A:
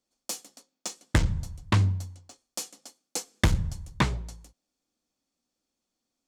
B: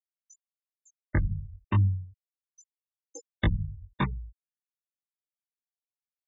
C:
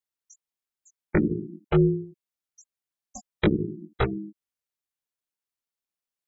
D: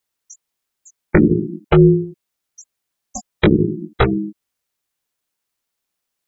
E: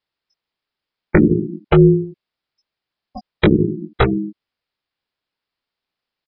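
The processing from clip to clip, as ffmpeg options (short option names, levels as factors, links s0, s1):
-af "afftfilt=real='re*gte(hypot(re,im),0.1)':imag='im*gte(hypot(re,im),0.1)':win_size=1024:overlap=0.75,flanger=delay=16:depth=5.2:speed=0.36"
-af "aeval=exprs='val(0)*sin(2*PI*260*n/s)':c=same,volume=2"
-af "alimiter=level_in=4.73:limit=0.891:release=50:level=0:latency=1,volume=0.891"
-af "aresample=11025,aresample=44100"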